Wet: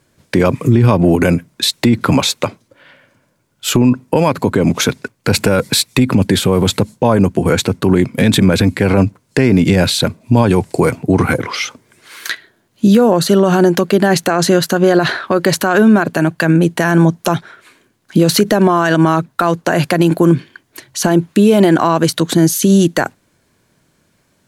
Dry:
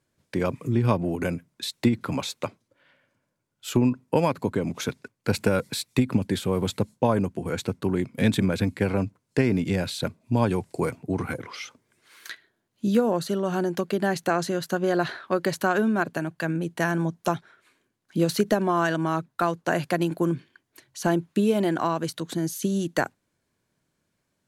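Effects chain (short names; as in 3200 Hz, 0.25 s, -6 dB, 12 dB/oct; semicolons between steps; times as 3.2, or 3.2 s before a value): maximiser +18 dB; gain -1 dB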